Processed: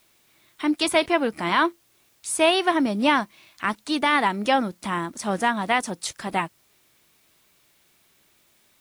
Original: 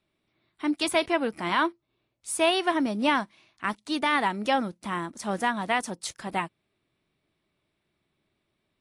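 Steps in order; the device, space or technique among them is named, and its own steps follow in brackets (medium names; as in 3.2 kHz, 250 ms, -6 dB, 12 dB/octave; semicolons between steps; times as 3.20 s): noise-reduction cassette on a plain deck (tape noise reduction on one side only encoder only; wow and flutter 29 cents; white noise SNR 38 dB); trim +4 dB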